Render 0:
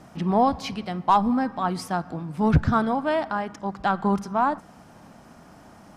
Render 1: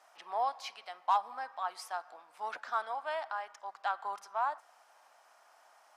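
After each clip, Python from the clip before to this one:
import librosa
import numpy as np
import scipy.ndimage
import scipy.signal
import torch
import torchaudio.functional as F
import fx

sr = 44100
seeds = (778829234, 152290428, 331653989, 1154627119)

y = scipy.signal.sosfilt(scipy.signal.butter(4, 680.0, 'highpass', fs=sr, output='sos'), x)
y = F.gain(torch.from_numpy(y), -9.0).numpy()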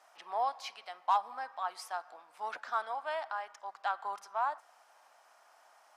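y = x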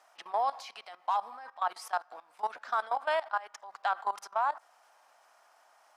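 y = fx.level_steps(x, sr, step_db=18)
y = F.gain(torch.from_numpy(y), 8.5).numpy()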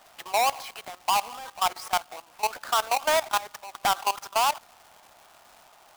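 y = fx.halfwave_hold(x, sr)
y = fx.dmg_crackle(y, sr, seeds[0], per_s=320.0, level_db=-45.0)
y = F.gain(torch.from_numpy(y), 3.0).numpy()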